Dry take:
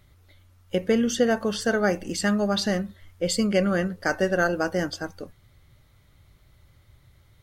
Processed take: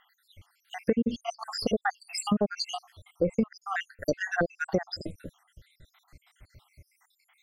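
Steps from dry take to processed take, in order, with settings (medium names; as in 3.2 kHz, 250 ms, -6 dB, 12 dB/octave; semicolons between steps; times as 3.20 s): random holes in the spectrogram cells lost 75%; low-pass that closes with the level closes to 1.6 kHz, closed at -22.5 dBFS; dynamic bell 1.5 kHz, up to -5 dB, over -46 dBFS, Q 1.3; compression, threshold -28 dBFS, peak gain reduction 10.5 dB; trim +6.5 dB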